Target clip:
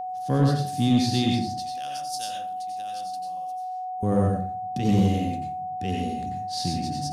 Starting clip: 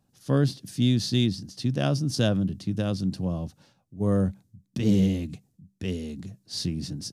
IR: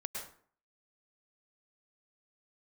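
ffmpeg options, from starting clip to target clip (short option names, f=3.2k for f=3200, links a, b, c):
-filter_complex "[0:a]asettb=1/sr,asplit=3[a][b][c];[a]atrim=end=1.604[d];[b]atrim=start=1.6:end=4.03,asetpts=PTS-STARTPTS,afade=t=in:d=0.004:c=qsin,afade=t=out:st=2.426:d=0.004:c=qsin,aderivative[e];[c]atrim=start=4.026[f];[d][e]acrossfade=d=0.004:c1=hsin:c2=qsin[g];[g][f]acrossfade=d=0.004:c1=qsin:c2=hsin[h];[1:a]atrim=start_sample=2205,asetrate=52920,aresample=44100[i];[h][i]afir=irnorm=-1:irlink=0,aeval=exprs='val(0)+0.02*sin(2*PI*740*n/s)':c=same,asoftclip=type=tanh:threshold=-14.5dB,volume=4.5dB"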